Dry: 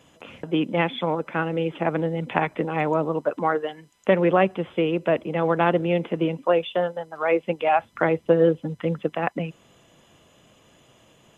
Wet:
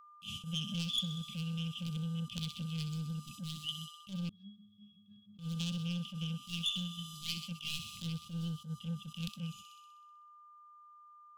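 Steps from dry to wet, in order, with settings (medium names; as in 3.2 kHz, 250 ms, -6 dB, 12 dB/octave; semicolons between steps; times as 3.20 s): tracing distortion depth 0.055 ms; in parallel at -5 dB: hard clipper -17.5 dBFS, distortion -10 dB; on the sum: gate -40 dBFS, range -49 dB; Chebyshev band-stop 210–3000 Hz, order 5; feedback echo behind a high-pass 63 ms, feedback 65%, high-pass 2.4 kHz, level -10 dB; compression 2.5:1, threshold -40 dBFS, peak gain reduction 13 dB; whistle 1.2 kHz -58 dBFS; 4.29–5.39 s: pitch-class resonator G#, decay 0.53 s; saturation -32.5 dBFS, distortion -20 dB; treble shelf 2.8 kHz +11.5 dB; attacks held to a fixed rise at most 200 dB/s; trim +1 dB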